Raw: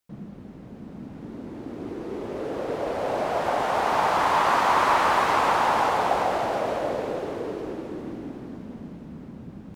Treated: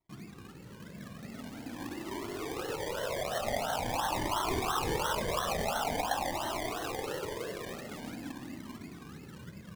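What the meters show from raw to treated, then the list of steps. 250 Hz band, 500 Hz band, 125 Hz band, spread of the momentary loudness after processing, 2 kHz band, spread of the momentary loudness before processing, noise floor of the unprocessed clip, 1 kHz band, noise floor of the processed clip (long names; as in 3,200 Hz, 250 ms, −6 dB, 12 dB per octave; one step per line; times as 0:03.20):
−6.5 dB, −9.0 dB, −2.5 dB, 16 LU, −10.0 dB, 21 LU, −43 dBFS, −12.5 dB, −50 dBFS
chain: high-pass filter 83 Hz
parametric band 480 Hz −2.5 dB
downward compressor 2 to 1, threshold −29 dBFS, peak gain reduction 7 dB
sample-and-hold swept by an LFO 26×, swing 60% 2.9 Hz
flanger whose copies keep moving one way rising 0.46 Hz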